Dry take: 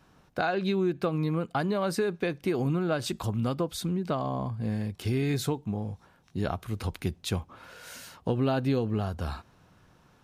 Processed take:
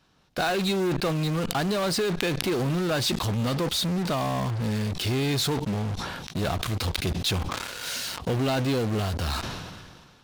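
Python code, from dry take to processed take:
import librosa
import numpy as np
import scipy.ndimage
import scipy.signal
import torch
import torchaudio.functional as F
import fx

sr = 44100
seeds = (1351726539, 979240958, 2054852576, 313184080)

p1 = fx.peak_eq(x, sr, hz=4000.0, db=9.5, octaves=1.4)
p2 = fx.fuzz(p1, sr, gain_db=48.0, gate_db=-43.0)
p3 = p1 + (p2 * 10.0 ** (-10.0 / 20.0))
p4 = fx.sustainer(p3, sr, db_per_s=34.0)
y = p4 * 10.0 ** (-5.5 / 20.0)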